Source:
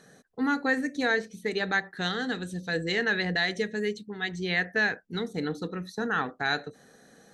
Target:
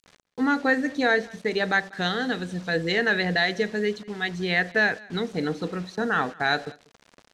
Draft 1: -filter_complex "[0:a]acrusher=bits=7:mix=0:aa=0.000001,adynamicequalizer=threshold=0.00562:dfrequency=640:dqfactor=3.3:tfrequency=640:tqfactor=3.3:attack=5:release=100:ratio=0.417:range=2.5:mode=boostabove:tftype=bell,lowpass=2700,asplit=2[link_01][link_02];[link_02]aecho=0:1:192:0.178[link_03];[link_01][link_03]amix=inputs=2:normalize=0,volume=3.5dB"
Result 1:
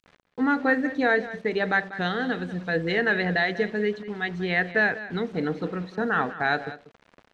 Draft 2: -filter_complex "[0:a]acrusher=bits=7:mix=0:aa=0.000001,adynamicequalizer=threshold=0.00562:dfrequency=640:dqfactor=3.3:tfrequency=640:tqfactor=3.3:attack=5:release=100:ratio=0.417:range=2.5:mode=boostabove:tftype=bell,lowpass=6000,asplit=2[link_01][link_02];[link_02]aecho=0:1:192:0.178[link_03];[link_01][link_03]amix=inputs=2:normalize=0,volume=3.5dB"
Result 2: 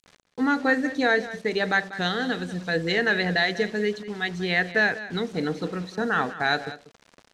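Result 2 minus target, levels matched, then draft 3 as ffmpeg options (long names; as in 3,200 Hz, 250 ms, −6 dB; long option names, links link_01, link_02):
echo-to-direct +9 dB
-filter_complex "[0:a]acrusher=bits=7:mix=0:aa=0.000001,adynamicequalizer=threshold=0.00562:dfrequency=640:dqfactor=3.3:tfrequency=640:tqfactor=3.3:attack=5:release=100:ratio=0.417:range=2.5:mode=boostabove:tftype=bell,lowpass=6000,asplit=2[link_01][link_02];[link_02]aecho=0:1:192:0.0631[link_03];[link_01][link_03]amix=inputs=2:normalize=0,volume=3.5dB"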